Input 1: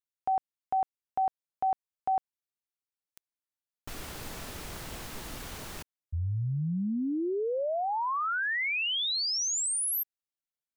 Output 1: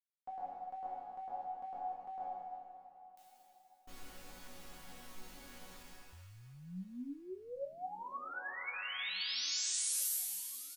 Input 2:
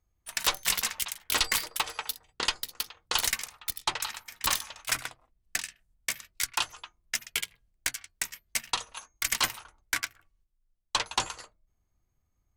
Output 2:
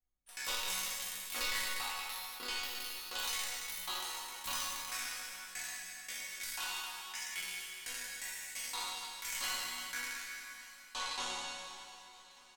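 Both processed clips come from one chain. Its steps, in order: spectral trails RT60 2.70 s; resonator bank F#3 sus4, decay 0.25 s; feedback echo 1.191 s, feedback 51%, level -23 dB; gain -1 dB

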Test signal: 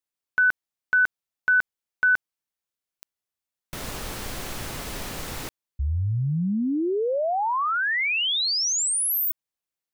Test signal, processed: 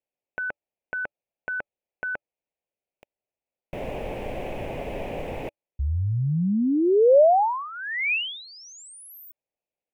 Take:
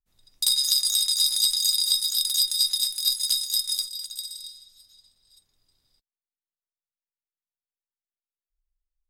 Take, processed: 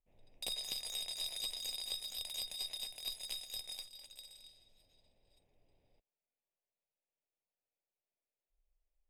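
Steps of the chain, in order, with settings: EQ curve 110 Hz 0 dB, 320 Hz +3 dB, 580 Hz +11 dB, 840 Hz +4 dB, 1300 Hz -14 dB, 2500 Hz +2 dB, 4200 Hz -21 dB

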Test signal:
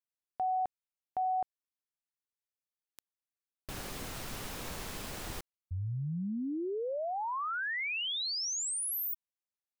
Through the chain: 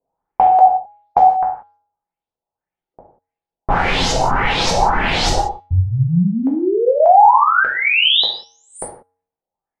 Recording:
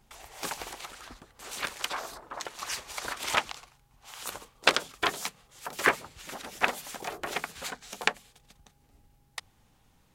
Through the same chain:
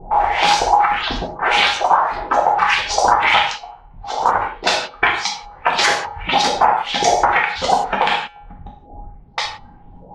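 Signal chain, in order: LFO low-pass saw up 1.7 Hz 510–6400 Hz; dynamic EQ 360 Hz, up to -7 dB, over -44 dBFS, Q 0.74; reverb removal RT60 1.7 s; resonator 92 Hz, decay 0.66 s, harmonics odd, mix 30%; compressor 10:1, threshold -42 dBFS; bell 840 Hz +14.5 dB 0.27 oct; non-linear reverb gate 0.21 s falling, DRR -2.5 dB; low-pass opened by the level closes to 710 Hz, open at -36.5 dBFS; maximiser +26 dB; gain -1 dB

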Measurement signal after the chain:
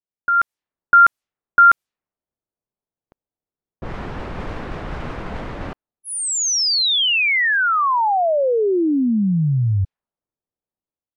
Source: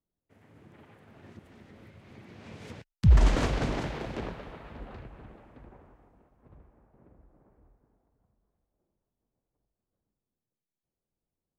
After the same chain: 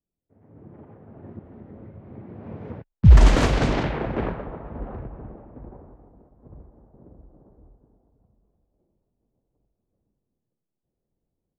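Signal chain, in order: low-pass opened by the level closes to 640 Hz, open at -22.5 dBFS; AGC gain up to 10 dB

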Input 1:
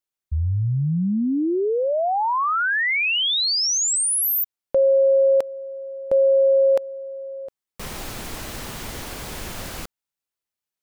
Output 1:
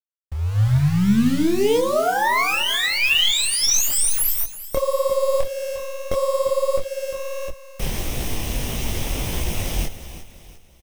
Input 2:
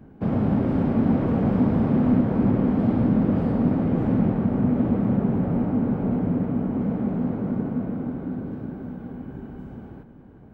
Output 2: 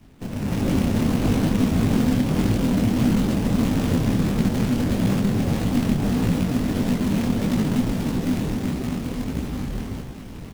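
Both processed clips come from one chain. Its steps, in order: minimum comb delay 0.33 ms; companded quantiser 4-bit; low shelf 77 Hz +11.5 dB; compressor 4:1, threshold -22 dBFS; feedback echo 0.351 s, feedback 39%, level -12.5 dB; AGC gain up to 13 dB; detuned doubles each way 55 cents; gain -3 dB

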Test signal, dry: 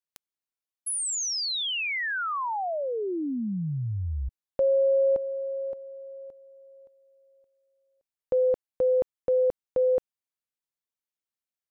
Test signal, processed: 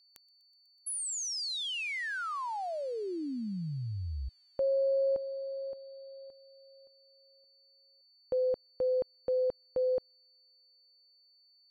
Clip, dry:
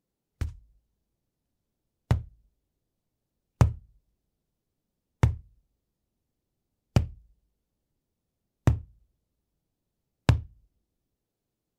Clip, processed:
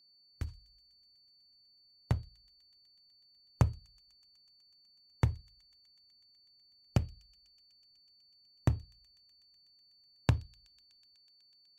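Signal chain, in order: thin delay 0.124 s, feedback 85%, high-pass 3900 Hz, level -23 dB; whine 4500 Hz -56 dBFS; gain -6.5 dB

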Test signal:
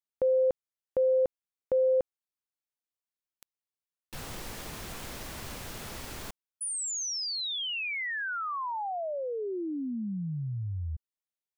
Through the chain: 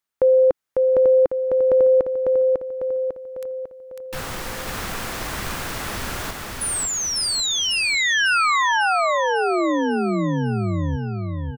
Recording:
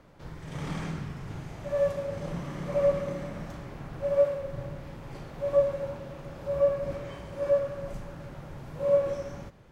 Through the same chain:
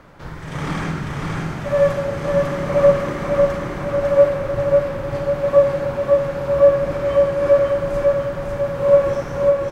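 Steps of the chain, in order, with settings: bell 1400 Hz +6 dB 1.4 oct; feedback echo 0.549 s, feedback 52%, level -3 dB; dynamic EQ 320 Hz, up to +3 dB, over -43 dBFS, Q 2.2; gain +8.5 dB

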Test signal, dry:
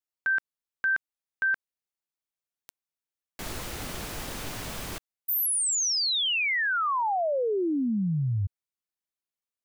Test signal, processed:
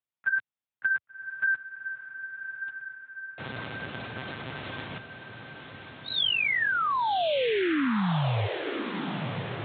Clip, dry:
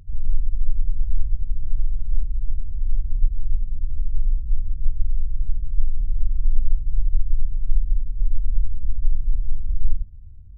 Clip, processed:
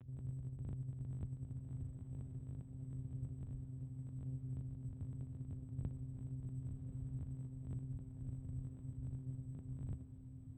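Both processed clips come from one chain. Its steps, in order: monotone LPC vocoder at 8 kHz 130 Hz; HPF 94 Hz 24 dB/oct; diffused feedback echo 1.127 s, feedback 61%, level -7.5 dB

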